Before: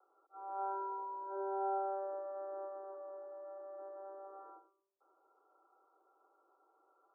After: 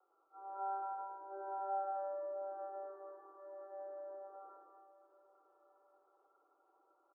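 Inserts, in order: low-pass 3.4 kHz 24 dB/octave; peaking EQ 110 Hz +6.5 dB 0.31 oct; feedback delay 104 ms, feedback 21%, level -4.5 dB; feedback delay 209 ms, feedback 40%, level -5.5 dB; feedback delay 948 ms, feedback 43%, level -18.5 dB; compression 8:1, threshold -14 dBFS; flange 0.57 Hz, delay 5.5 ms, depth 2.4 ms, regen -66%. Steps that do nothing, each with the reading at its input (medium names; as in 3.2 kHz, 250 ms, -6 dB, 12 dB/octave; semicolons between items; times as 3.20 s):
low-pass 3.4 kHz: input has nothing above 1.4 kHz; peaking EQ 110 Hz: input has nothing below 300 Hz; compression, threshold -14 dBFS: peak at its input -25.5 dBFS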